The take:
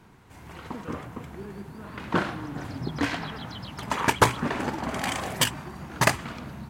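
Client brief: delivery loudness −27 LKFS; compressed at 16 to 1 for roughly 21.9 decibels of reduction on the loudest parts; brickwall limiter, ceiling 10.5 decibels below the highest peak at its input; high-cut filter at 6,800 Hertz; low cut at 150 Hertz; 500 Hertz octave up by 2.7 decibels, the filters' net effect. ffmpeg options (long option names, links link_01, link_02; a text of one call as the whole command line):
ffmpeg -i in.wav -af "highpass=150,lowpass=6800,equalizer=frequency=500:width_type=o:gain=3.5,acompressor=threshold=-35dB:ratio=16,volume=15dB,alimiter=limit=-15.5dB:level=0:latency=1" out.wav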